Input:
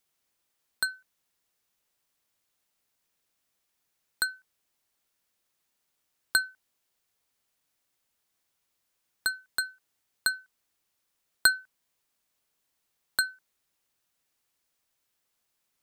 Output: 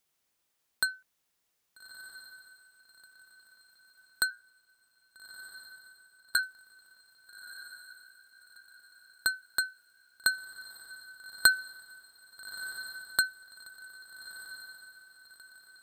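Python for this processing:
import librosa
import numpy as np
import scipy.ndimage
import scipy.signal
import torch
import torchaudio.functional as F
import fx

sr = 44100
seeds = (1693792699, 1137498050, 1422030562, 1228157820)

y = fx.ring_mod(x, sr, carrier_hz=59.0, at=(4.3, 6.39))
y = fx.echo_diffused(y, sr, ms=1272, feedback_pct=41, wet_db=-12.5)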